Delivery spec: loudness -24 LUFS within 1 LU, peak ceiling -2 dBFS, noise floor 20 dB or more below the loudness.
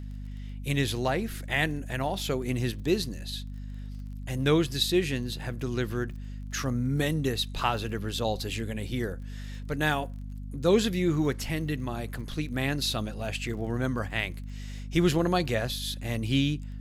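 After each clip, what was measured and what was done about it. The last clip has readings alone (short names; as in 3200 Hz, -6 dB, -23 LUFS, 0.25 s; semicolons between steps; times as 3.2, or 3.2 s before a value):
ticks 23/s; hum 50 Hz; harmonics up to 250 Hz; hum level -35 dBFS; loudness -29.0 LUFS; peak -11.0 dBFS; loudness target -24.0 LUFS
-> de-click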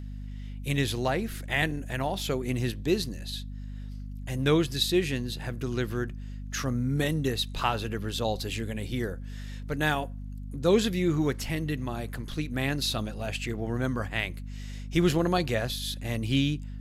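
ticks 0.059/s; hum 50 Hz; harmonics up to 250 Hz; hum level -35 dBFS
-> de-hum 50 Hz, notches 5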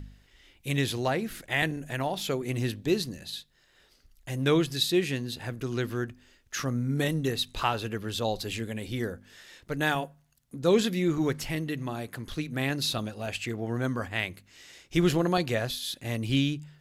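hum none; loudness -29.5 LUFS; peak -11.5 dBFS; loudness target -24.0 LUFS
-> gain +5.5 dB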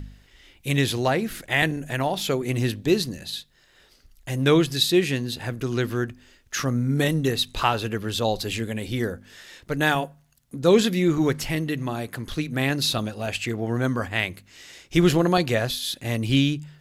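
loudness -24.0 LUFS; peak -6.0 dBFS; noise floor -58 dBFS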